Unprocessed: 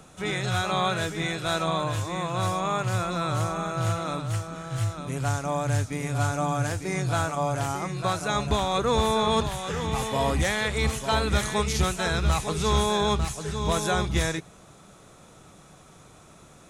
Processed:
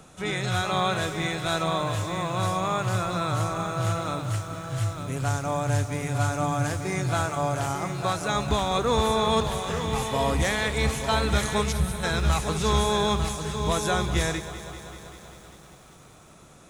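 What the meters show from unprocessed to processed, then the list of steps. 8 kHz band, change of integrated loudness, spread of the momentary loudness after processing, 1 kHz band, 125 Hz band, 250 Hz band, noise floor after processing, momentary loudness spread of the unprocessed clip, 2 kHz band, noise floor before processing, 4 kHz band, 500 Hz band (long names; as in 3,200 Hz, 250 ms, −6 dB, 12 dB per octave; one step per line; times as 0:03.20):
0.0 dB, +0.5 dB, 6 LU, +0.5 dB, +0.5 dB, +0.5 dB, −51 dBFS, 6 LU, +0.5 dB, −52 dBFS, +0.5 dB, +0.5 dB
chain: gain on a spectral selection 0:11.72–0:12.03, 210–8,000 Hz −14 dB
feedback echo at a low word length 194 ms, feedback 80%, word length 8 bits, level −13.5 dB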